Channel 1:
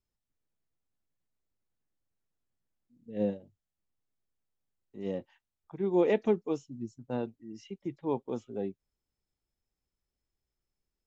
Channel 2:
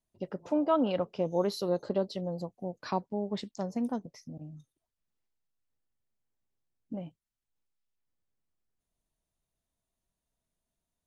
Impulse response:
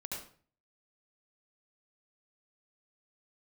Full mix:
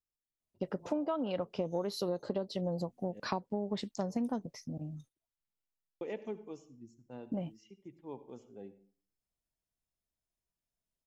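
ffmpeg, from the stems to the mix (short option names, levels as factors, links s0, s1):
-filter_complex "[0:a]highshelf=f=3800:g=7.5,bandreject=f=3800:w=8.6,volume=0.178,asplit=3[s0][s1][s2];[s0]atrim=end=3.2,asetpts=PTS-STARTPTS,afade=t=out:st=3.196:d=0.004:c=hsin[s3];[s1]atrim=start=3.2:end=6.01,asetpts=PTS-STARTPTS,volume=0[s4];[s2]atrim=start=6.01,asetpts=PTS-STARTPTS,afade=t=in:d=0.004:c=hsin[s5];[s3][s4][s5]concat=n=3:v=0:a=1,asplit=2[s6][s7];[s7]volume=0.266[s8];[1:a]agate=range=0.251:threshold=0.00126:ratio=16:detection=peak,adelay=400,volume=1.41[s9];[2:a]atrim=start_sample=2205[s10];[s8][s10]afir=irnorm=-1:irlink=0[s11];[s6][s9][s11]amix=inputs=3:normalize=0,acompressor=threshold=0.0316:ratio=12"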